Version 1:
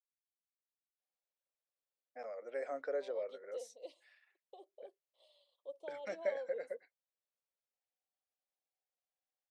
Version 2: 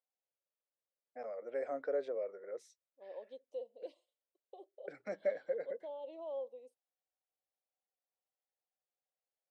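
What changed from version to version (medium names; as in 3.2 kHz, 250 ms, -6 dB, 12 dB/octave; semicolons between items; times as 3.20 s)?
first voice: entry -1.00 s; master: add tilt EQ -2.5 dB/octave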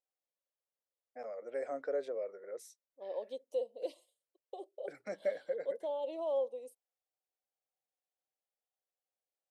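second voice +8.0 dB; master: remove Bessel low-pass 4.1 kHz, order 2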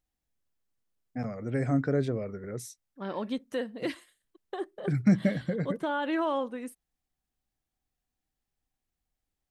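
second voice: remove Butterworth band-stop 1.6 kHz, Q 0.67; master: remove ladder high-pass 480 Hz, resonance 65%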